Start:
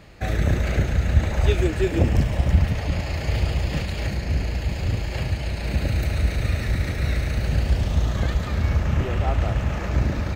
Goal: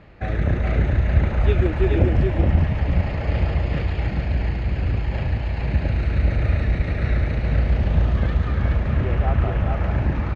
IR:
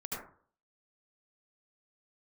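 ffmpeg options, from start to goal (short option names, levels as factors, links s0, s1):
-af "lowpass=2400,aecho=1:1:424:0.668"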